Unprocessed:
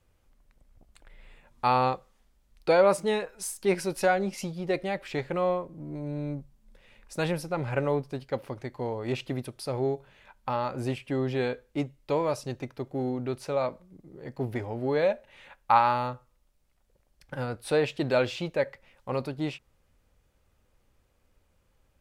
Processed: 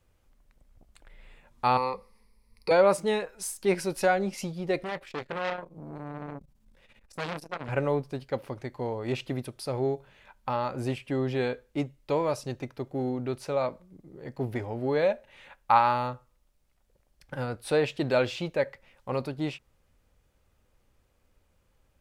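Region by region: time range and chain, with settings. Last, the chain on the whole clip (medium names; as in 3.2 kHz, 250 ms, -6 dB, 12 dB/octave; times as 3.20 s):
1.77–2.71 s: rippled EQ curve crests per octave 0.89, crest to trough 17 dB + compression 1.5:1, threshold -37 dBFS
4.84–7.69 s: doubling 18 ms -11 dB + transformer saturation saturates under 1.8 kHz
whole clip: none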